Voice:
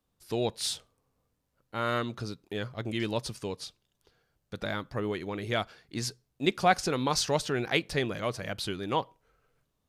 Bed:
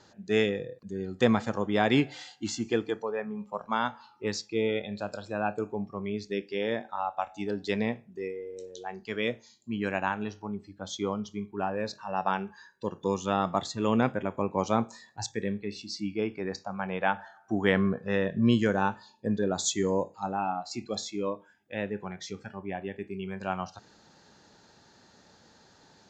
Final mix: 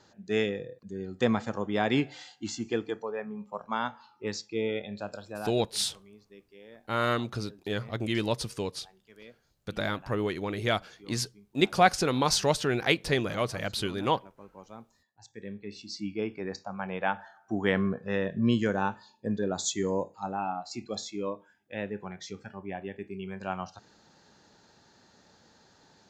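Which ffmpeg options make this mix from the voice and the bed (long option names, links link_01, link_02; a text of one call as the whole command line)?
ffmpeg -i stem1.wav -i stem2.wav -filter_complex "[0:a]adelay=5150,volume=2.5dB[link_01];[1:a]volume=16.5dB,afade=type=out:start_time=5.13:duration=0.58:silence=0.11885,afade=type=in:start_time=15.21:duration=0.74:silence=0.112202[link_02];[link_01][link_02]amix=inputs=2:normalize=0" out.wav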